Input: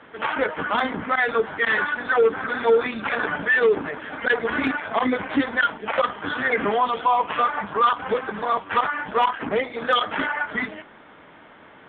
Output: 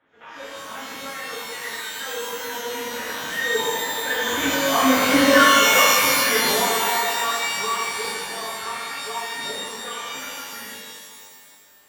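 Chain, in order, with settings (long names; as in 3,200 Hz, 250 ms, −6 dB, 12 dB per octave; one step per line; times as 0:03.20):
source passing by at 0:05.28, 16 m/s, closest 8.4 metres
reverb with rising layers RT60 1.8 s, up +12 semitones, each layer −2 dB, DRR −6.5 dB
level −1.5 dB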